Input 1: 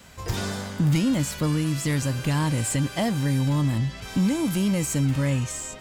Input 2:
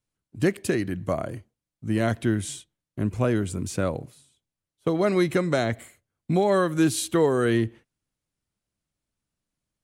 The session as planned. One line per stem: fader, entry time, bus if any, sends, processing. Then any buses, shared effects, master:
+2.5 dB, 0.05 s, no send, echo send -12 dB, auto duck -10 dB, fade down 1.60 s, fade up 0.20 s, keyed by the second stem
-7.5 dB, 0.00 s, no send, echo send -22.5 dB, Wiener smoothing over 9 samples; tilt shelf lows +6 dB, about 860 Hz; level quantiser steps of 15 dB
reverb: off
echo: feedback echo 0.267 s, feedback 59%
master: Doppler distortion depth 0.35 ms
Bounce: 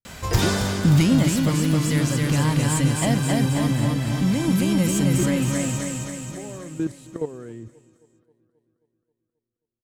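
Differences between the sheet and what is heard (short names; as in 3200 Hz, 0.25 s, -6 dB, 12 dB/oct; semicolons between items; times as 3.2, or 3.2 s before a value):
stem 1 +2.5 dB -> +10.5 dB; master: missing Doppler distortion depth 0.35 ms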